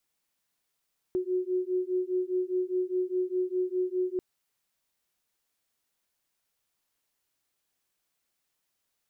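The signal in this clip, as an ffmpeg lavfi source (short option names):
-f lavfi -i "aevalsrc='0.0335*(sin(2*PI*364*t)+sin(2*PI*368.9*t))':d=3.04:s=44100"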